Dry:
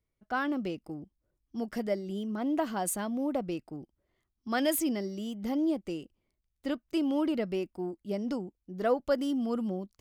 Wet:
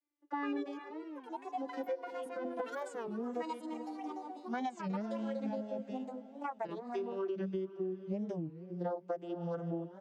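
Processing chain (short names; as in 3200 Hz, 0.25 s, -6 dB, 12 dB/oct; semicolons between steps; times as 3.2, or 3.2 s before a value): vocoder on a gliding note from D4, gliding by -10 st; HPF 310 Hz 12 dB/oct; bell 1600 Hz +2.5 dB; comb 5.9 ms, depth 82%; on a send: diffused feedback echo 0.496 s, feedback 43%, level -16 dB; on the sum: echoes that change speed 0.197 s, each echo +6 st, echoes 2, each echo -6 dB; compressor 10:1, threshold -32 dBFS, peak gain reduction 10.5 dB; low shelf 460 Hz +4 dB; record warp 33 1/3 rpm, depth 250 cents; gain -3 dB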